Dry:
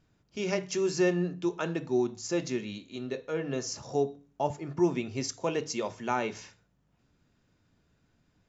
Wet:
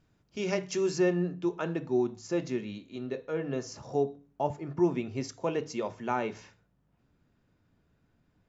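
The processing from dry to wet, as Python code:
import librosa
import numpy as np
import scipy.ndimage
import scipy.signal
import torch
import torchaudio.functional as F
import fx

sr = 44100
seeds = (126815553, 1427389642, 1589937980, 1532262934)

y = fx.high_shelf(x, sr, hz=3400.0, db=fx.steps((0.0, -2.5), (0.97, -11.0)))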